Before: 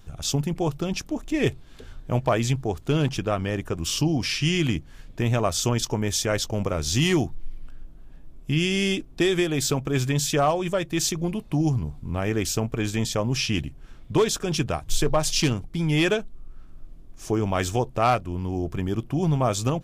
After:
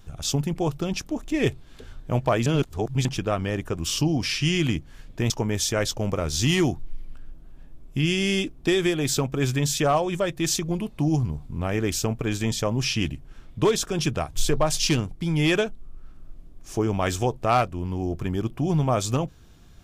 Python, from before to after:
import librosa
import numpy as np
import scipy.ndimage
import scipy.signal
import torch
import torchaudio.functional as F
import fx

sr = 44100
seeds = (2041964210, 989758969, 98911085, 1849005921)

y = fx.edit(x, sr, fx.reverse_span(start_s=2.46, length_s=0.59),
    fx.cut(start_s=5.3, length_s=0.53), tone=tone)